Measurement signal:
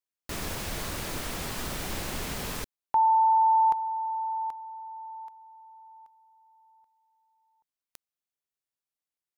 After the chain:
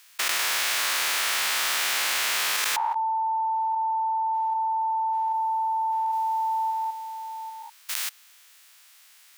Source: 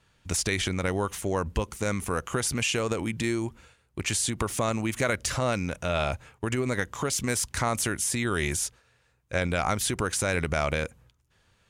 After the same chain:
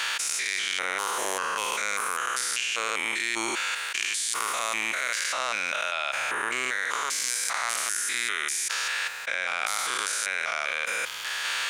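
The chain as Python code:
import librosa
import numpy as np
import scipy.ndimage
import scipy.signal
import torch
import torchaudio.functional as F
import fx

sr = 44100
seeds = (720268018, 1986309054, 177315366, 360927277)

y = fx.spec_steps(x, sr, hold_ms=200)
y = scipy.signal.sosfilt(scipy.signal.butter(2, 1500.0, 'highpass', fs=sr, output='sos'), y)
y = fx.high_shelf(y, sr, hz=4200.0, db=-6.0)
y = fx.env_flatten(y, sr, amount_pct=100)
y = y * librosa.db_to_amplitude(5.0)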